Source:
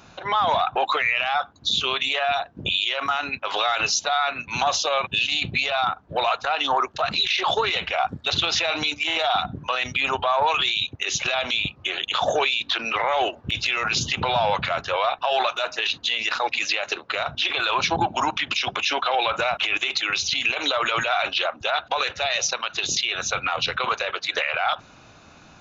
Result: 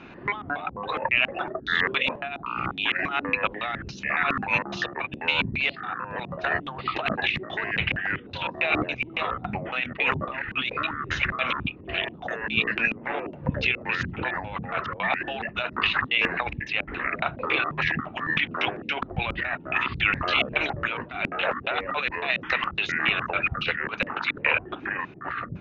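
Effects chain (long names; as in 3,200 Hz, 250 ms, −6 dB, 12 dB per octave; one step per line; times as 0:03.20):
compressor whose output falls as the input rises −25 dBFS, ratio −0.5
auto-filter low-pass square 3.6 Hz 250–2,400 Hz
delay with pitch and tempo change per echo 105 ms, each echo −6 semitones, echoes 2
sample-and-hold tremolo
noise in a band 120–380 Hz −46 dBFS
level −1.5 dB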